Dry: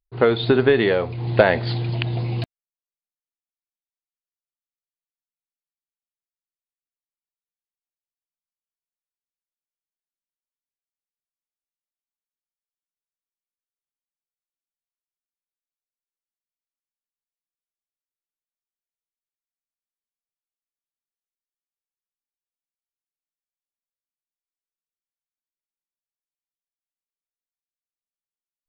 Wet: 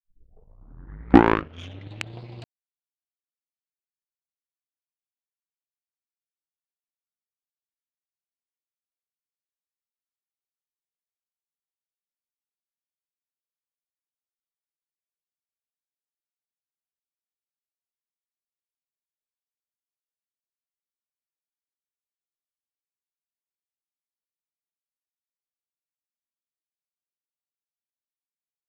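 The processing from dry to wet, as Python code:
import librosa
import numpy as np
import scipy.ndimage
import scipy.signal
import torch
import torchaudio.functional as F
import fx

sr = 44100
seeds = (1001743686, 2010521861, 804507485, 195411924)

y = fx.tape_start_head(x, sr, length_s=2.19)
y = fx.power_curve(y, sr, exponent=2.0)
y = F.gain(torch.from_numpy(y), 2.0).numpy()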